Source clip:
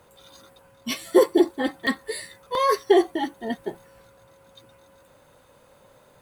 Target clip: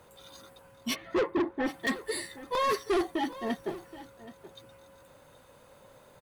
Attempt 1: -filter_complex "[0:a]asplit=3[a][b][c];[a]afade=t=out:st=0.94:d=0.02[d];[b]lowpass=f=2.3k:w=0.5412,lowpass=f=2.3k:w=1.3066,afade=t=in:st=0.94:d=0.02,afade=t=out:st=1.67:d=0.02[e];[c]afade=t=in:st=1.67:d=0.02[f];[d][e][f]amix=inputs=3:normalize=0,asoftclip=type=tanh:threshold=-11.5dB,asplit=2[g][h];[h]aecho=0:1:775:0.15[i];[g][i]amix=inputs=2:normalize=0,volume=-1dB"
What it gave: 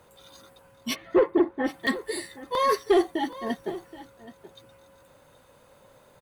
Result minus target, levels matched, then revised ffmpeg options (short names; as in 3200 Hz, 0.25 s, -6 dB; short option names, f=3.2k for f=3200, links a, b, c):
soft clip: distortion -10 dB
-filter_complex "[0:a]asplit=3[a][b][c];[a]afade=t=out:st=0.94:d=0.02[d];[b]lowpass=f=2.3k:w=0.5412,lowpass=f=2.3k:w=1.3066,afade=t=in:st=0.94:d=0.02,afade=t=out:st=1.67:d=0.02[e];[c]afade=t=in:st=1.67:d=0.02[f];[d][e][f]amix=inputs=3:normalize=0,asoftclip=type=tanh:threshold=-22.5dB,asplit=2[g][h];[h]aecho=0:1:775:0.15[i];[g][i]amix=inputs=2:normalize=0,volume=-1dB"